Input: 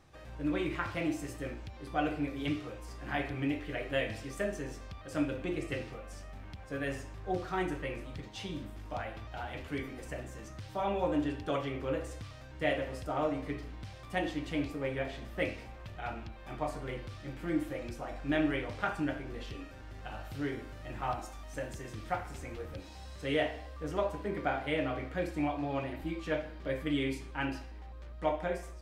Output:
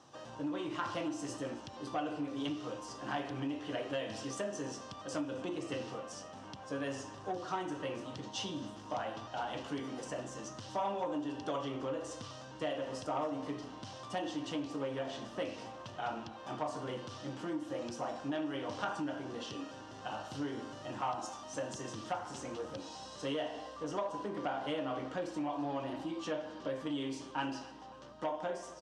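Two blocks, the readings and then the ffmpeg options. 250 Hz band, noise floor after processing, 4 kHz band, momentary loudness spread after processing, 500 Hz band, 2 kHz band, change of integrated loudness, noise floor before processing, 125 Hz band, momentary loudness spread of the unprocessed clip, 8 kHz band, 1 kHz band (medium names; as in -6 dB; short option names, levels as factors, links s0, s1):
-3.5 dB, -50 dBFS, +0.5 dB, 7 LU, -3.0 dB, -7.0 dB, -3.5 dB, -48 dBFS, -7.5 dB, 12 LU, +4.5 dB, -0.5 dB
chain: -af "equalizer=f=2300:w=2:g=-14.5,acompressor=threshold=0.0158:ratio=10,asoftclip=type=tanh:threshold=0.0251,highpass=f=140:w=0.5412,highpass=f=140:w=1.3066,equalizer=f=170:t=q:w=4:g=-8,equalizer=f=390:t=q:w=4:g=-4,equalizer=f=1000:t=q:w=4:g=6,equalizer=f=2900:t=q:w=4:g=9,equalizer=f=5800:t=q:w=4:g=6,lowpass=f=8500:w=0.5412,lowpass=f=8500:w=1.3066,aecho=1:1:270|540|810|1080:0.1|0.052|0.027|0.0141,volume=1.78"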